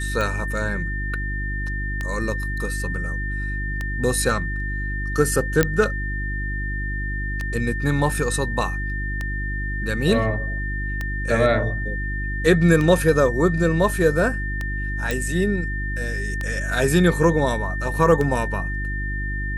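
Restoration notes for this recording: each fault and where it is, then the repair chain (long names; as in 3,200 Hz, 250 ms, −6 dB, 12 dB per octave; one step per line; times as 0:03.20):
mains hum 50 Hz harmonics 7 −27 dBFS
scratch tick 33 1/3 rpm
whistle 1,800 Hz −29 dBFS
0:05.63: click −2 dBFS
0:15.11: click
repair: click removal
notch filter 1,800 Hz, Q 30
hum removal 50 Hz, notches 7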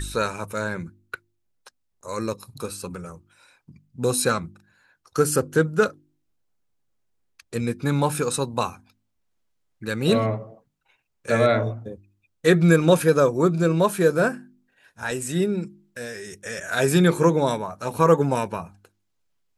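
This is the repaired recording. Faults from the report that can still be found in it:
0:15.11: click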